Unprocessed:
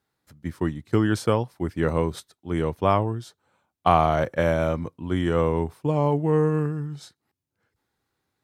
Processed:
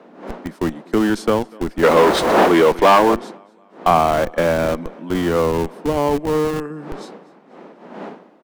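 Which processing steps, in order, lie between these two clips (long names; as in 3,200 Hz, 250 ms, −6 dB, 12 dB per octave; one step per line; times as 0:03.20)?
wind on the microphone 600 Hz −40 dBFS
0:06.18–0:06.70: low-shelf EQ 420 Hz −5 dB
on a send: repeating echo 244 ms, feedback 47%, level −23 dB
0:01.83–0:03.15: on the sum: mid-hump overdrive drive 27 dB, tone 2,900 Hz, clips at −7.5 dBFS
Butterworth high-pass 180 Hz 48 dB per octave
high-shelf EQ 8,300 Hz −7 dB
in parallel at −6 dB: comparator with hysteresis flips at −24.5 dBFS
on the sum: level +3.5 dB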